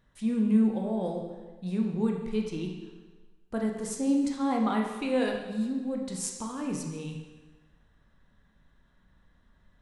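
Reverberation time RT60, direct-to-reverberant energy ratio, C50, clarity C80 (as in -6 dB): 1.3 s, 0.5 dB, 4.0 dB, 6.0 dB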